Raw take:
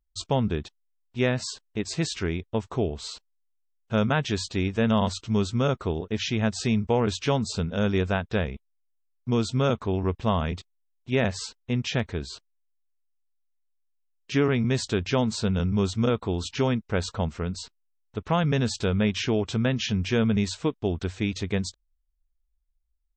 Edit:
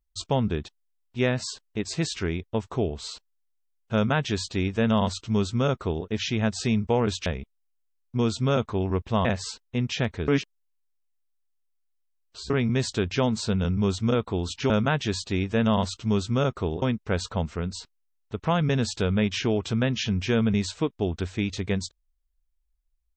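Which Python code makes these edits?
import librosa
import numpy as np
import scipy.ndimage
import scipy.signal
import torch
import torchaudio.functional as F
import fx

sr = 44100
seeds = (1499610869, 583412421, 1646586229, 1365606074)

y = fx.edit(x, sr, fx.duplicate(start_s=3.94, length_s=2.12, to_s=16.65),
    fx.cut(start_s=7.26, length_s=1.13),
    fx.cut(start_s=10.38, length_s=0.82),
    fx.reverse_span(start_s=12.23, length_s=2.22), tone=tone)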